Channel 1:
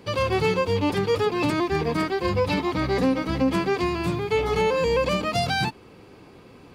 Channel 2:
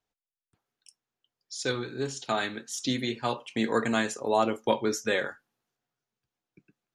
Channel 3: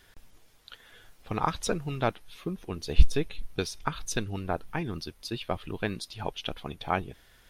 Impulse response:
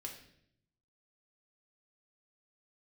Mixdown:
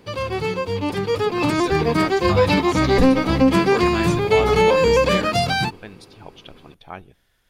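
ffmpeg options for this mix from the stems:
-filter_complex "[0:a]dynaudnorm=f=270:g=11:m=10.5dB,volume=-2dB[a];[1:a]volume=0dB[b];[2:a]volume=-8dB,asplit=3[c][d][e];[d]volume=-20.5dB[f];[e]apad=whole_len=306261[g];[b][g]sidechaincompress=threshold=-41dB:ratio=8:attack=29:release=159[h];[3:a]atrim=start_sample=2205[i];[f][i]afir=irnorm=-1:irlink=0[j];[a][h][c][j]amix=inputs=4:normalize=0"

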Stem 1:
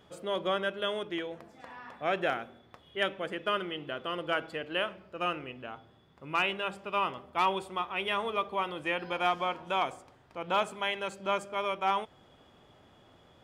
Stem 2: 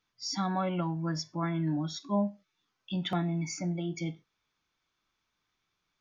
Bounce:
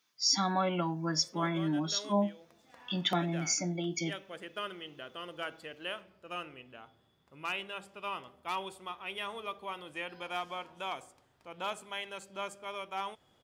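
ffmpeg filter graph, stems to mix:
-filter_complex "[0:a]adelay=1100,volume=-9.5dB[a];[1:a]highpass=210,volume=1.5dB,asplit=2[b][c];[c]apad=whole_len=640954[d];[a][d]sidechaincompress=threshold=-35dB:ratio=8:attack=30:release=604[e];[e][b]amix=inputs=2:normalize=0,highshelf=f=4.2k:g=11"

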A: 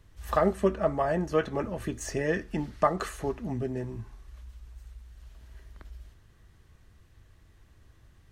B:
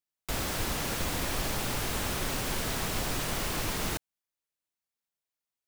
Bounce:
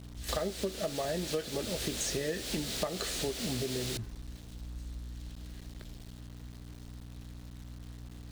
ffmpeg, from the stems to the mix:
-filter_complex "[0:a]aeval=exprs='val(0)+0.00562*(sin(2*PI*60*n/s)+sin(2*PI*2*60*n/s)/2+sin(2*PI*3*60*n/s)/3+sin(2*PI*4*60*n/s)/4+sin(2*PI*5*60*n/s)/5)':c=same,volume=0dB[a];[1:a]highpass=180,asoftclip=type=tanh:threshold=-32.5dB,volume=-3dB[b];[a][b]amix=inputs=2:normalize=0,equalizer=f=500:t=o:w=1:g=5,equalizer=f=1k:t=o:w=1:g=-9,equalizer=f=4k:t=o:w=1:g=10,equalizer=f=8k:t=o:w=1:g=5,aeval=exprs='val(0)*gte(abs(val(0)),0.00355)':c=same,acompressor=threshold=-30dB:ratio=10"

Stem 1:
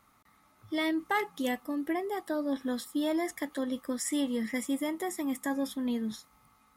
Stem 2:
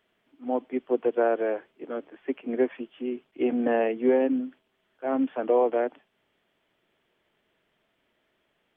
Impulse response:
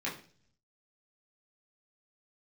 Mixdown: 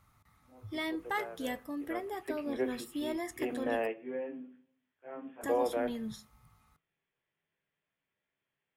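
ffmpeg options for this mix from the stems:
-filter_complex "[0:a]volume=-5dB,asplit=3[a][b][c];[a]atrim=end=3.87,asetpts=PTS-STARTPTS,afade=t=out:st=3.866:d=0.004:c=hsin[d];[b]atrim=start=3.87:end=5.41,asetpts=PTS-STARTPTS,volume=0[e];[c]atrim=start=5.41,asetpts=PTS-STARTPTS,afade=t=in:d=0.004:c=hsin[f];[d][e][f]concat=n=3:v=0:a=1,asplit=3[g][h][i];[h]volume=-20dB[j];[1:a]lowshelf=f=350:g=-7.5,volume=-6dB,afade=t=in:st=1.56:d=0.47:silence=0.223872,asplit=2[k][l];[l]volume=-13.5dB[m];[i]apad=whole_len=386537[n];[k][n]sidechaingate=range=-24dB:threshold=-57dB:ratio=16:detection=peak[o];[2:a]atrim=start_sample=2205[p];[j][m]amix=inputs=2:normalize=0[q];[q][p]afir=irnorm=-1:irlink=0[r];[g][o][r]amix=inputs=3:normalize=0,lowshelf=f=170:t=q:w=1.5:g=11.5"

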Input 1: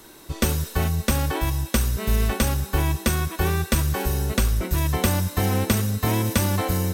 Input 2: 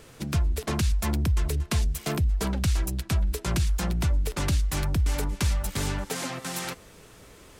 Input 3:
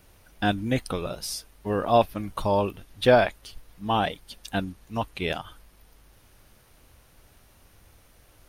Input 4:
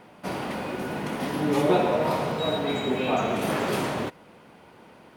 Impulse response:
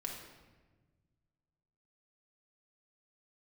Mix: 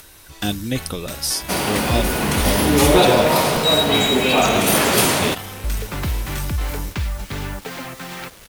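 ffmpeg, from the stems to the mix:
-filter_complex "[0:a]equalizer=f=1.7k:w=0.62:g=7.5,asoftclip=type=tanh:threshold=-19.5dB,volume=-12dB[a];[1:a]lowpass=2.5k,acrusher=bits=7:mix=0:aa=0.000001,adelay=1550,volume=1dB,asplit=3[b][c][d];[b]atrim=end=2.98,asetpts=PTS-STARTPTS,afade=t=out:st=2.976:d=0.004:c=hsin[e];[c]atrim=start=2.98:end=5.64,asetpts=PTS-STARTPTS,volume=0[f];[d]atrim=start=5.64,asetpts=PTS-STARTPTS,afade=t=in:d=0.004:c=hsin[g];[e][f][g]concat=n=3:v=0:a=1[h];[2:a]acrossover=split=500|3000[i][j][k];[j]acompressor=threshold=-38dB:ratio=6[l];[i][l][k]amix=inputs=3:normalize=0,volume=2.5dB[m];[3:a]highshelf=f=5.5k:g=7.5,acontrast=78,adelay=1250,volume=0.5dB[n];[a][h][m][n]amix=inputs=4:normalize=0,highshelf=f=2.6k:g=10,acompressor=mode=upward:threshold=-40dB:ratio=2.5"

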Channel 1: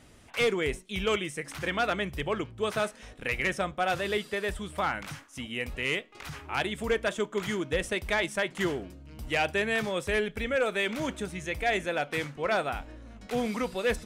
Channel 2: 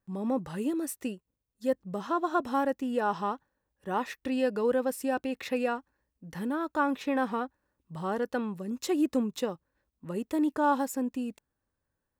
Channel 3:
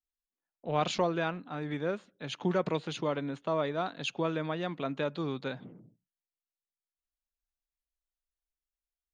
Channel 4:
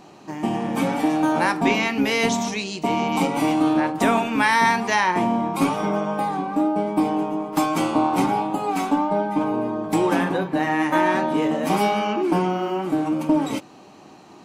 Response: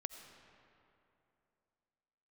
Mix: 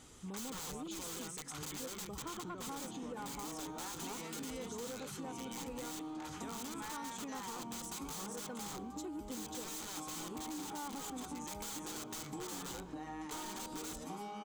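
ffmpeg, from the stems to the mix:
-filter_complex "[0:a]lowshelf=f=390:g=-4.5,bandreject=f=60:t=h:w=6,bandreject=f=120:t=h:w=6,bandreject=f=180:t=h:w=6,aeval=exprs='(mod(35.5*val(0)+1,2)-1)/35.5':c=same,volume=-1dB,asplit=2[a][b];[b]volume=-13dB[c];[1:a]adelay=150,volume=-5.5dB[d];[2:a]alimiter=limit=-22dB:level=0:latency=1,volume=-7dB[e];[3:a]adelay=2400,volume=-15.5dB[f];[4:a]atrim=start_sample=2205[g];[c][g]afir=irnorm=-1:irlink=0[h];[a][d][e][f][h]amix=inputs=5:normalize=0,superequalizer=8b=0.447:11b=0.501:12b=0.562:15b=2,asoftclip=type=tanh:threshold=-26dB,acompressor=threshold=-42dB:ratio=6"

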